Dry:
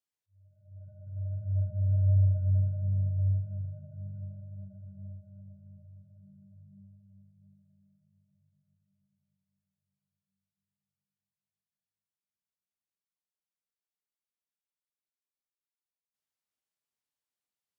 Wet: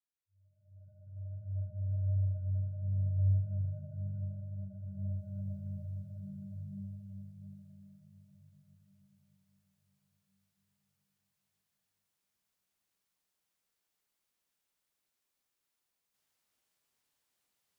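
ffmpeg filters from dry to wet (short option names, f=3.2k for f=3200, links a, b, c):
-af "volume=11dB,afade=t=in:st=2.7:d=1:silence=0.316228,afade=t=in:st=4.79:d=0.75:silence=0.354813"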